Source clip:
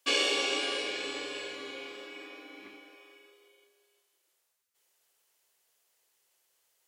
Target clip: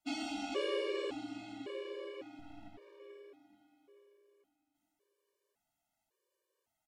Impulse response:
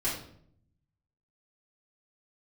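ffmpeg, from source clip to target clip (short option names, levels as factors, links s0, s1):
-filter_complex "[0:a]tiltshelf=f=1100:g=9.5,aecho=1:1:435|870|1305|1740|2175:0.335|0.164|0.0804|0.0394|0.0193,asettb=1/sr,asplit=3[s0][s1][s2];[s0]atrim=end=2.394[s3];[s1]atrim=start=2.39:end=3,asetpts=PTS-STARTPTS,afade=t=in:d=0.004:c=qsin,afade=t=out:st=0.606:d=0.004:c=qsin,aeval=exprs='max(val(0),0)':c=same[s4];[s2]atrim=start=2.996[s5];[s3][s4]acrossfade=d=0.004:c1=hsin:c2=qsin[s6];[s6][s5]acrossfade=d=0.004:c1=qsin:c2=hsin,afftfilt=real='re*gt(sin(2*PI*0.9*pts/sr)*(1-2*mod(floor(b*sr/1024/310),2)),0)':imag='im*gt(sin(2*PI*0.9*pts/sr)*(1-2*mod(floor(b*sr/1024/310),2)),0)':win_size=1024:overlap=0.75,volume=0.631"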